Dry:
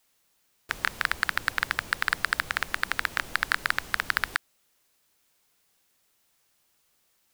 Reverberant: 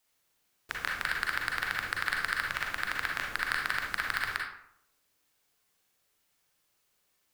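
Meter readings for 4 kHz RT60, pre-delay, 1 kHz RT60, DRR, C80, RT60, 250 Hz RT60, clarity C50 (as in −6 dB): 0.40 s, 36 ms, 0.70 s, −1.0 dB, 7.0 dB, 0.70 s, 0.75 s, 1.5 dB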